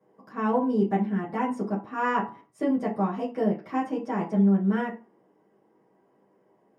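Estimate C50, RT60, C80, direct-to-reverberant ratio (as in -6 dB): 10.0 dB, 0.40 s, 14.5 dB, -9.5 dB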